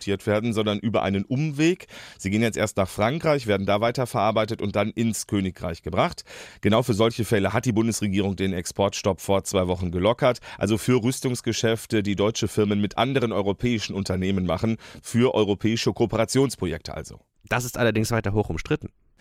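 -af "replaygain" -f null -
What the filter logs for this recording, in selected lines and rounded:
track_gain = +3.9 dB
track_peak = 0.304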